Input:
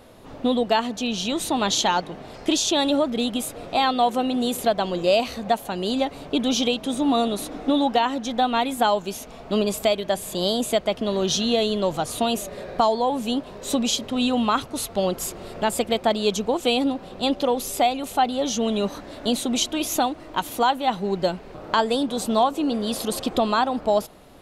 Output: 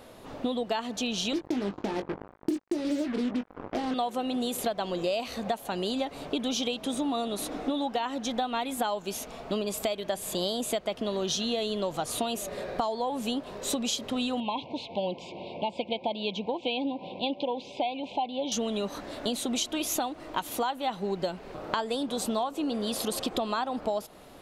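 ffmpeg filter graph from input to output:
-filter_complex "[0:a]asettb=1/sr,asplit=3[s0][s1][s2];[s0]atrim=end=1.334[s3];[s1]atrim=start=1.33:end=3.94,asetpts=PTS-STARTPTS,afade=t=in:d=0.004:c=qsin,afade=t=out:st=2.606:d=0.004:c=qsin,lowpass=f=360:t=q:w=1.8,acrusher=bits=4:mix=0:aa=0.5,asplit=2[s4][s5];[s5]adelay=20,volume=0.422[s6];[s4][s6]amix=inputs=2:normalize=0,atrim=end_sample=115101[s7];[s2]atrim=start=3.936[s8];[s3][s7]acrossfade=d=0.004:c1=hsin:c2=qsin[s9];[s9][s8]acrossfade=d=0.004:c1=qsin:c2=hsin,asettb=1/sr,asplit=3[s10][s11][s12];[s10]atrim=end=14.404[s13];[s11]atrim=start=14.4:end=18.52,asetpts=PTS-STARTPTS,afade=t=in:d=0.004:c=qsin,afade=t=out:st=4.116:d=0.004:c=qsin,acompressor=mode=upward:threshold=0.0398:ratio=2.5:attack=3.2:release=140:knee=2.83:detection=peak,asuperstop=centerf=1500:order=20:qfactor=1.3,highpass=150,equalizer=f=230:t=q:w=4:g=-3,equalizer=f=410:t=q:w=4:g=-8,equalizer=f=680:t=q:w=4:g=-3,lowpass=f=3500:w=0.5412,lowpass=f=3500:w=1.3066[s14];[s12]atrim=start=18.516[s15];[s13][s14]acrossfade=d=0.004:c1=hsin:c2=qsin[s16];[s16][s15]acrossfade=d=0.004:c1=qsin:c2=hsin,lowshelf=f=190:g=-5.5,acompressor=threshold=0.0447:ratio=5"

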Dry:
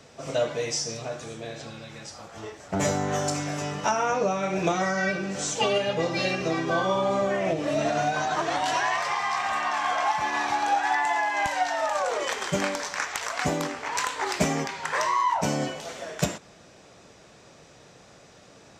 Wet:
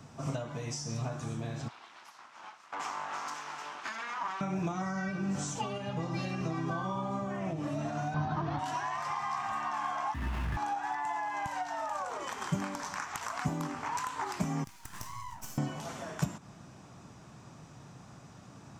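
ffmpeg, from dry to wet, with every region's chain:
-filter_complex "[0:a]asettb=1/sr,asplit=3[s0][s1][s2];[s0]atrim=end=1.684[s3];[s1]atrim=start=1.68:end=4.41,asetpts=PTS-STARTPTS,afade=t=in:d=0.004:c=qsin,afade=t=out:st=2.726:d=0.004:c=qsin,aeval=exprs='abs(val(0))':c=same,highpass=790,lowpass=4700[s4];[s2]atrim=start=4.406[s5];[s3][s4]acrossfade=d=0.004:c1=hsin:c2=qsin[s6];[s6][s5]acrossfade=d=0.004:c1=qsin:c2=hsin,asettb=1/sr,asplit=3[s7][s8][s9];[s7]atrim=end=8.144[s10];[s8]atrim=start=8.14:end=8.59,asetpts=PTS-STARTPTS,afade=t=in:d=0.004:c=qsin,afade=t=out:st=0.446:d=0.004:c=qsin,lowpass=f=4600:t=q:w=2.1,aemphasis=mode=reproduction:type=riaa[s11];[s9]atrim=start=8.586[s12];[s10][s11]acrossfade=d=0.004:c1=hsin:c2=qsin[s13];[s13][s12]acrossfade=d=0.004:c1=qsin:c2=hsin,asettb=1/sr,asplit=3[s14][s15][s16];[s14]atrim=end=10.144[s17];[s15]atrim=start=10.14:end=10.57,asetpts=PTS-STARTPTS,afade=t=in:d=0.004:c=qsin,afade=t=out:st=0.426:d=0.004:c=qsin,lowpass=1700,aeval=exprs='abs(val(0))':c=same,afreqshift=61[s18];[s16]atrim=start=10.566[s19];[s17][s18]acrossfade=d=0.004:c1=hsin:c2=qsin[s20];[s20][s19]acrossfade=d=0.004:c1=qsin:c2=hsin,asettb=1/sr,asplit=3[s21][s22][s23];[s21]atrim=end=14.644[s24];[s22]atrim=start=14.64:end=15.58,asetpts=PTS-STARTPTS,afade=t=in:d=0.004:c=qsin,afade=t=out:st=0.936:d=0.004:c=qsin,aderivative,aeval=exprs='max(val(0),0)':c=same[s25];[s23]atrim=start=15.576[s26];[s24][s25]acrossfade=d=0.004:c1=hsin:c2=qsin[s27];[s27][s26]acrossfade=d=0.004:c1=qsin:c2=hsin,acompressor=threshold=0.0282:ratio=6,equalizer=f=125:t=o:w=1:g=8,equalizer=f=250:t=o:w=1:g=4,equalizer=f=500:t=o:w=1:g=-11,equalizer=f=1000:t=o:w=1:g=5,equalizer=f=2000:t=o:w=1:g=-6,equalizer=f=4000:t=o:w=1:g=-7,equalizer=f=8000:t=o:w=1:g=-3"

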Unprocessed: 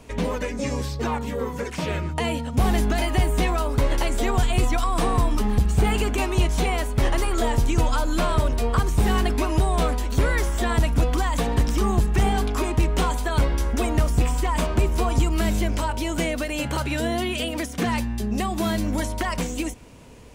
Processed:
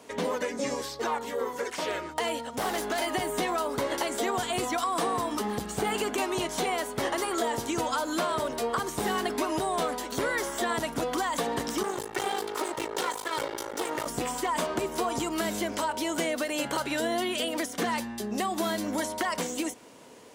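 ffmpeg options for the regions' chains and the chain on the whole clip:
-filter_complex "[0:a]asettb=1/sr,asplit=3[s0][s1][s2];[s0]atrim=end=0.744[s3];[s1]atrim=start=0.74:end=3.07,asetpts=PTS-STARTPTS,afade=t=in:d=0.004:c=qsin,afade=t=out:st=2.326:d=0.004:c=qsin,equalizer=f=170:t=o:w=1.1:g=-10,aeval=exprs='0.141*(abs(mod(val(0)/0.141+3,4)-2)-1)':c=same[s4];[s2]atrim=start=3.066[s5];[s3][s4]acrossfade=d=0.004:c1=hsin:c2=qsin[s6];[s6][s5]acrossfade=d=0.004:c1=qsin:c2=hsin,asettb=1/sr,asplit=3[s7][s8][s9];[s7]atrim=end=11.834[s10];[s8]atrim=start=11.83:end=14.06,asetpts=PTS-STARTPTS,afade=t=in:d=0.004:c=qsin,afade=t=out:st=2.226:d=0.004:c=qsin,lowshelf=f=120:g=-11,aecho=1:1:2.2:0.62,atrim=end_sample=98343,aeval=exprs='max(val(0),0)':c=same[s11];[s9]atrim=start=14.056[s12];[s10][s11]acrossfade=d=0.004:c1=hsin:c2=qsin[s13];[s13][s12]acrossfade=d=0.004:c1=qsin:c2=hsin,highpass=310,equalizer=f=2500:t=o:w=0.27:g=-6,acompressor=threshold=0.0631:ratio=6"

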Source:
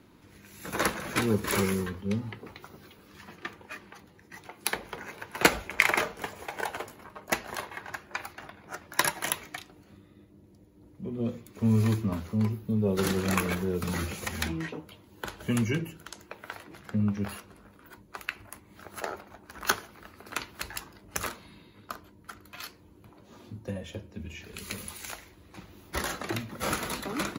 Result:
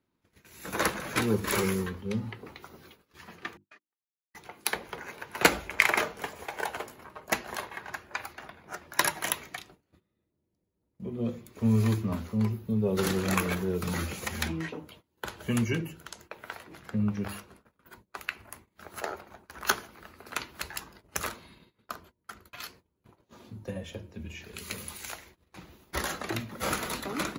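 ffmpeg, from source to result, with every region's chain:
-filter_complex "[0:a]asettb=1/sr,asplit=3[s0][s1][s2];[s0]atrim=end=3.574[s3];[s1]atrim=start=3.57:end=4.35,asetpts=PTS-STARTPTS,afade=t=in:d=0.004:c=qsin,afade=t=out:st=0.776:d=0.004:c=qsin,agate=range=0.00891:threshold=0.00631:ratio=16:release=100:detection=peak,acompressor=threshold=0.00398:ratio=16:attack=3.2:release=140:knee=1:detection=peak,highpass=230,lowpass=5600[s4];[s2]atrim=start=4.346[s5];[s3][s4]acrossfade=d=0.004:c1=hsin:c2=qsin[s6];[s6][s5]acrossfade=d=0.004:c1=qsin:c2=hsin,bandreject=f=50:t=h:w=6,bandreject=f=100:t=h:w=6,bandreject=f=150:t=h:w=6,bandreject=f=200:t=h:w=6,bandreject=f=250:t=h:w=6,bandreject=f=300:t=h:w=6,bandreject=f=350:t=h:w=6,agate=range=0.0891:threshold=0.00224:ratio=16:detection=peak"

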